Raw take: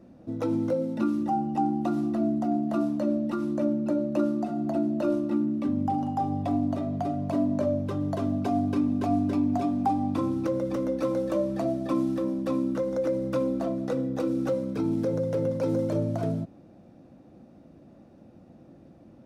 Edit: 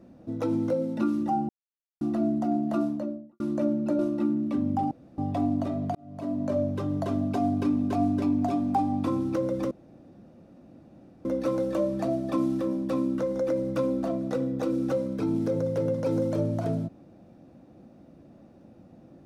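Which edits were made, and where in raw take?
1.49–2.01 s: mute
2.74–3.40 s: studio fade out
3.99–5.10 s: delete
6.02–6.29 s: room tone
7.06–7.71 s: fade in
10.82 s: insert room tone 1.54 s

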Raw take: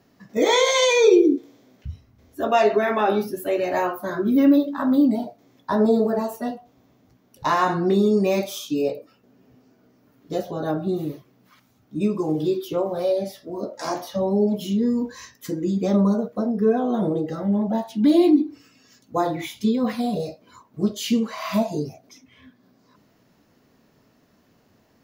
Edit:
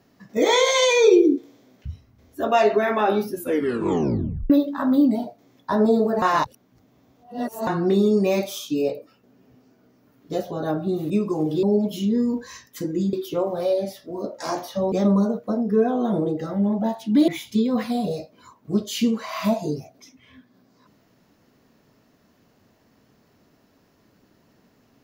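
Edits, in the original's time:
3.34 s: tape stop 1.16 s
6.22–7.67 s: reverse
11.10–11.99 s: delete
14.31–15.81 s: move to 12.52 s
18.17–19.37 s: delete

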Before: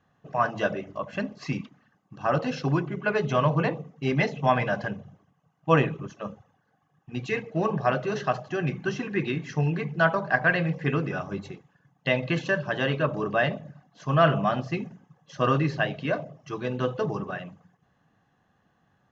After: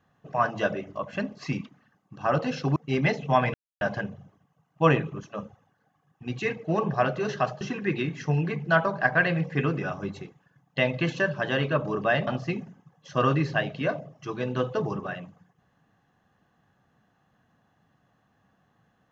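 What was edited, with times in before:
2.76–3.90 s: delete
4.68 s: insert silence 0.27 s
8.48–8.90 s: delete
13.56–14.51 s: delete

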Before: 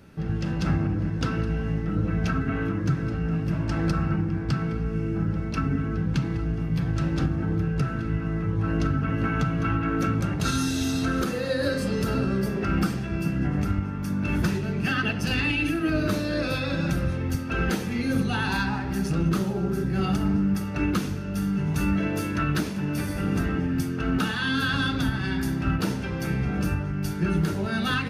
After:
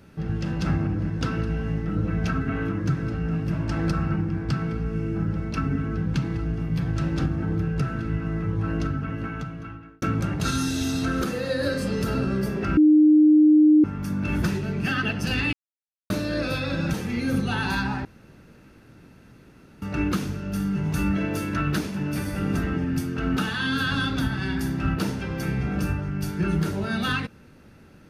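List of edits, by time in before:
8.52–10.02 s: fade out
12.77–13.84 s: bleep 305 Hz -11.5 dBFS
15.53–16.10 s: mute
16.94–17.76 s: delete
18.87–20.64 s: room tone

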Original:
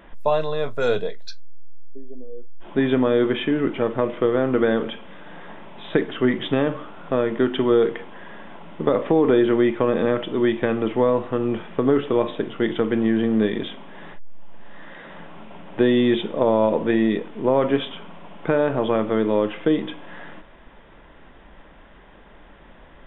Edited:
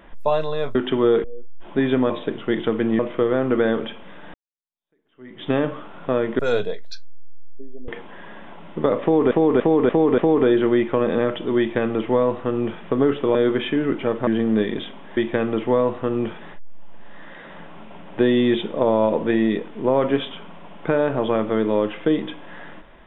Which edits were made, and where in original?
0.75–2.24 s: swap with 7.42–7.91 s
3.10–4.02 s: swap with 12.22–13.11 s
5.37–6.54 s: fade in exponential
9.05–9.34 s: loop, 5 plays
10.46–11.70 s: copy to 14.01 s

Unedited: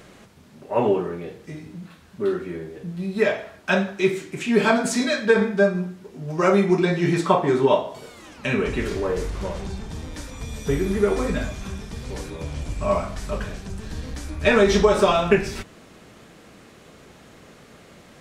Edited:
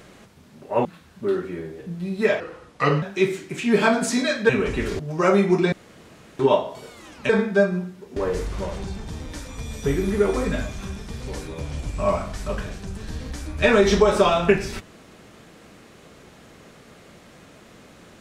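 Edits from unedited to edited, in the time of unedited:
0.85–1.82 s: delete
3.37–3.85 s: speed 77%
5.32–6.19 s: swap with 8.49–8.99 s
6.92–7.59 s: room tone

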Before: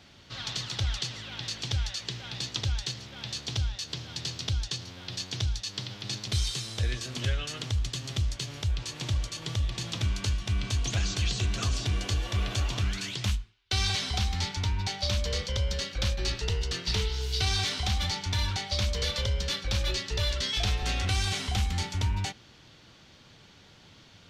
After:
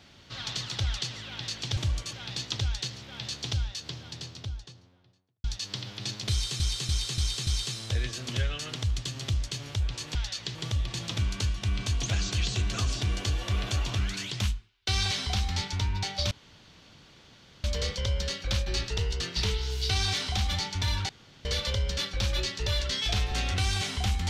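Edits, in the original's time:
1.77–2.17 s: swap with 9.03–9.39 s
3.56–5.48 s: studio fade out
6.35–6.64 s: loop, 5 plays
15.15 s: insert room tone 1.33 s
18.60–18.96 s: room tone

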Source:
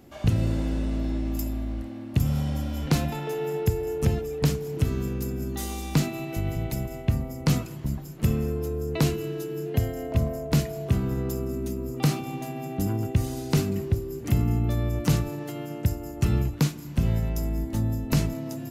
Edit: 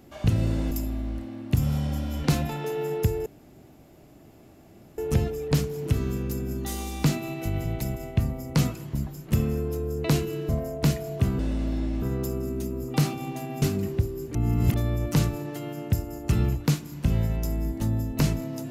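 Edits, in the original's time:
0.71–1.34 s: move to 11.08 s
3.89 s: insert room tone 1.72 s
9.40–10.18 s: delete
12.68–13.55 s: delete
14.28–14.67 s: reverse

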